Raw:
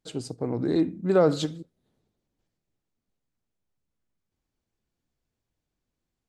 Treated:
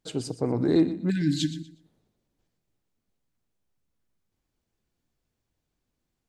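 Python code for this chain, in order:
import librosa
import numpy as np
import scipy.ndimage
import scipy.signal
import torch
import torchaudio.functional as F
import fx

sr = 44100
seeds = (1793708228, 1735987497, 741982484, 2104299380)

p1 = fx.spec_erase(x, sr, start_s=1.1, length_s=0.6, low_hz=340.0, high_hz=1500.0)
p2 = p1 + fx.echo_feedback(p1, sr, ms=121, feedback_pct=24, wet_db=-14.0, dry=0)
y = p2 * librosa.db_to_amplitude(2.5)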